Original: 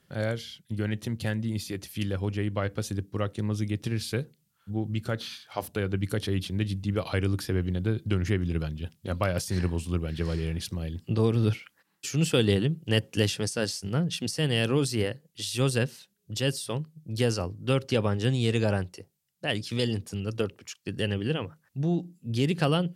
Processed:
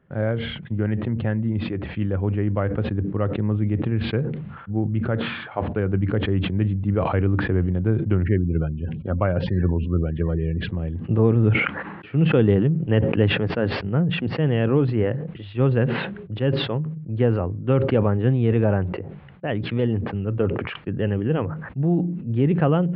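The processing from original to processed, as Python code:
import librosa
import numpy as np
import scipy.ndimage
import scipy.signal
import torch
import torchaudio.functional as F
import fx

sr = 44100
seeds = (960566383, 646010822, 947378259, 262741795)

y = fx.spec_gate(x, sr, threshold_db=-30, keep='strong', at=(8.23, 10.69))
y = scipy.ndimage.gaussian_filter1d(y, 4.6, mode='constant')
y = fx.sustainer(y, sr, db_per_s=48.0)
y = F.gain(torch.from_numpy(y), 6.0).numpy()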